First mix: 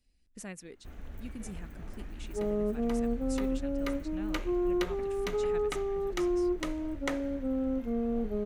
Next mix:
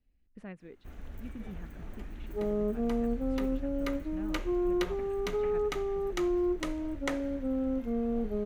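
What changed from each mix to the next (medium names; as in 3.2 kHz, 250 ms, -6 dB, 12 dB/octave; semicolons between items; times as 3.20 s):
speech: add distance through air 480 m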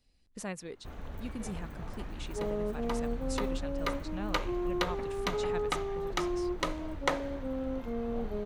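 speech: remove distance through air 480 m; second sound -8.5 dB; master: add graphic EQ 125/500/1000/4000 Hz +7/+5/+9/+6 dB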